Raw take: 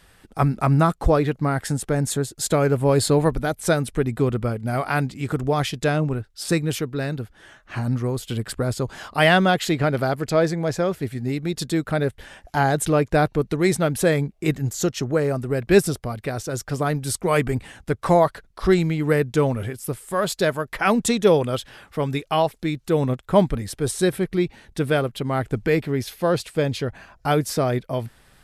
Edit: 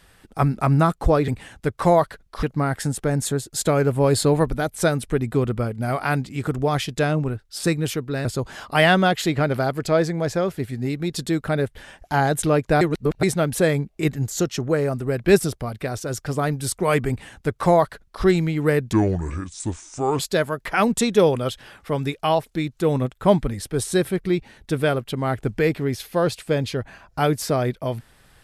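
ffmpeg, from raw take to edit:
ffmpeg -i in.wav -filter_complex "[0:a]asplit=8[link_01][link_02][link_03][link_04][link_05][link_06][link_07][link_08];[link_01]atrim=end=1.282[link_09];[link_02]atrim=start=17.518:end=18.672[link_10];[link_03]atrim=start=1.278:end=7.102[link_11];[link_04]atrim=start=8.678:end=13.242[link_12];[link_05]atrim=start=13.238:end=13.662,asetpts=PTS-STARTPTS,areverse[link_13];[link_06]atrim=start=13.658:end=19.364[link_14];[link_07]atrim=start=19.36:end=20.27,asetpts=PTS-STARTPTS,asetrate=31752,aresample=44100[link_15];[link_08]atrim=start=20.266[link_16];[link_09][link_10]acrossfade=duration=0.004:curve1=hsin:curve2=hsin[link_17];[link_17][link_11]acrossfade=duration=0.004:curve1=hsin:curve2=hsin[link_18];[link_18][link_12]acrossfade=duration=0.004:curve1=hsin:curve2=hsin[link_19];[link_19][link_13]acrossfade=duration=0.004:curve1=hsin:curve2=hsin[link_20];[link_20][link_14]acrossfade=duration=0.004:curve1=hsin:curve2=hsin[link_21];[link_21][link_15]acrossfade=duration=0.004:curve1=hsin:curve2=hsin[link_22];[link_22][link_16]acrossfade=duration=0.004:curve1=hsin:curve2=hsin" out.wav

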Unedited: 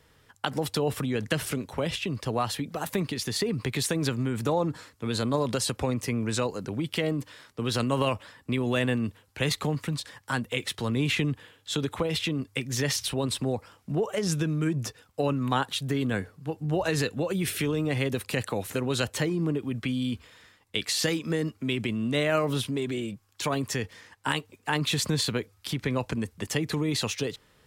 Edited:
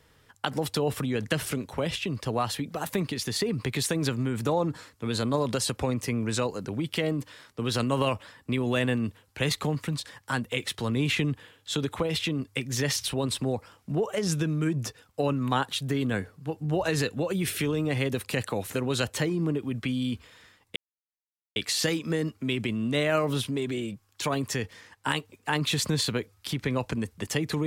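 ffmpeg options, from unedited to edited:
ffmpeg -i in.wav -filter_complex "[0:a]asplit=2[link_01][link_02];[link_01]atrim=end=20.76,asetpts=PTS-STARTPTS,afade=type=out:start_time=20.756:duration=0.004:curve=hsin,apad=pad_dur=0.8[link_03];[link_02]atrim=start=20.76,asetpts=PTS-STARTPTS,afade=type=in:duration=0.004:curve=hsin[link_04];[link_03][link_04]concat=n=2:v=0:a=1" out.wav

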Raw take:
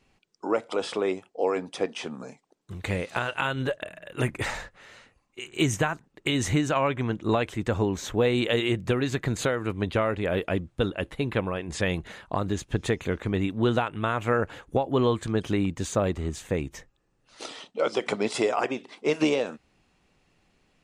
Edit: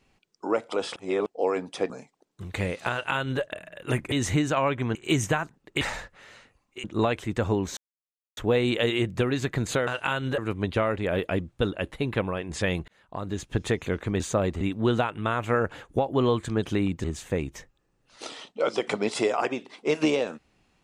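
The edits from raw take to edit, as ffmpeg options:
ffmpeg -i in.wav -filter_complex "[0:a]asplit=15[link_01][link_02][link_03][link_04][link_05][link_06][link_07][link_08][link_09][link_10][link_11][link_12][link_13][link_14][link_15];[link_01]atrim=end=0.962[link_16];[link_02]atrim=start=0.958:end=1.262,asetpts=PTS-STARTPTS,areverse[link_17];[link_03]atrim=start=1.258:end=1.902[link_18];[link_04]atrim=start=2.198:end=4.422[link_19];[link_05]atrim=start=6.308:end=7.142[link_20];[link_06]atrim=start=5.448:end=6.312[link_21];[link_07]atrim=start=4.418:end=5.452[link_22];[link_08]atrim=start=7.138:end=8.07,asetpts=PTS-STARTPTS,afade=type=out:start_time=0.928:duration=0.004:curve=hsin,apad=pad_dur=0.6[link_23];[link_09]atrim=start=8.07:end=9.572,asetpts=PTS-STARTPTS,afade=type=in:duration=0.004:curve=hsin[link_24];[link_10]atrim=start=3.208:end=3.722[link_25];[link_11]atrim=start=9.568:end=12.07,asetpts=PTS-STARTPTS,afade=type=out:start_time=2.498:duration=0.004:curve=hsin[link_26];[link_12]atrim=start=12.07:end=13.392,asetpts=PTS-STARTPTS,afade=type=in:duration=0.65[link_27];[link_13]atrim=start=15.818:end=16.232[link_28];[link_14]atrim=start=13.388:end=15.822[link_29];[link_15]atrim=start=16.228[link_30];[link_16][link_17]acrossfade=duration=0.004:curve1=hsin:curve2=hsin[link_31];[link_31][link_18]acrossfade=duration=0.004:curve1=hsin:curve2=hsin[link_32];[link_32][link_19]acrossfade=duration=0.004:curve1=hsin:curve2=hsin[link_33];[link_33][link_20]acrossfade=duration=0.004:curve1=hsin:curve2=hsin[link_34];[link_34][link_21]acrossfade=duration=0.004:curve1=hsin:curve2=hsin[link_35];[link_35][link_22]acrossfade=duration=0.004:curve1=hsin:curve2=hsin[link_36];[link_23][link_24]concat=n=2:v=0:a=1[link_37];[link_36][link_37]acrossfade=duration=0.004:curve1=hsin:curve2=hsin[link_38];[link_38][link_25]acrossfade=duration=0.004:curve1=hsin:curve2=hsin[link_39];[link_26][link_27]concat=n=2:v=0:a=1[link_40];[link_39][link_40]acrossfade=duration=0.004:curve1=hsin:curve2=hsin[link_41];[link_41][link_28]acrossfade=duration=0.004:curve1=hsin:curve2=hsin[link_42];[link_42][link_29]acrossfade=duration=0.004:curve1=hsin:curve2=hsin[link_43];[link_43][link_30]acrossfade=duration=0.004:curve1=hsin:curve2=hsin" out.wav

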